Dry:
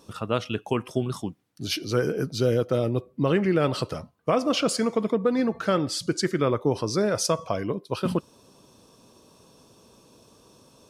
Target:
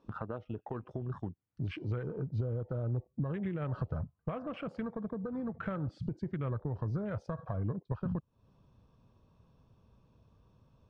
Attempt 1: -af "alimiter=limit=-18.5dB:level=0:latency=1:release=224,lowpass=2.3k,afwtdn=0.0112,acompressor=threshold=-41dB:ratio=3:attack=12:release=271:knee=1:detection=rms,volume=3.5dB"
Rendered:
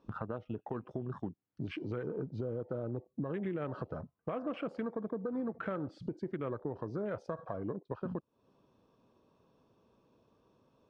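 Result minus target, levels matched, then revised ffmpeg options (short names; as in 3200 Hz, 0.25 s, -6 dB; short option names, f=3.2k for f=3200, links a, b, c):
125 Hz band -6.0 dB
-af "alimiter=limit=-18.5dB:level=0:latency=1:release=224,lowpass=2.3k,afwtdn=0.0112,acompressor=threshold=-41dB:ratio=3:attack=12:release=271:knee=1:detection=rms,asubboost=boost=9:cutoff=110,volume=3.5dB"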